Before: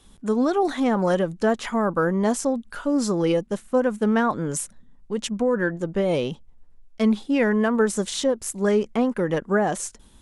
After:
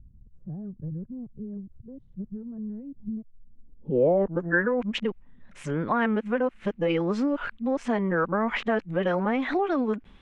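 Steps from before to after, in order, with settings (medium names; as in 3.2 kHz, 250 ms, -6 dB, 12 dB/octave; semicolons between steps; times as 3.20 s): reverse the whole clip; compression, threshold -22 dBFS, peak gain reduction 7.5 dB; low-pass sweep 120 Hz -> 2.4 kHz, 3.22–4.73 s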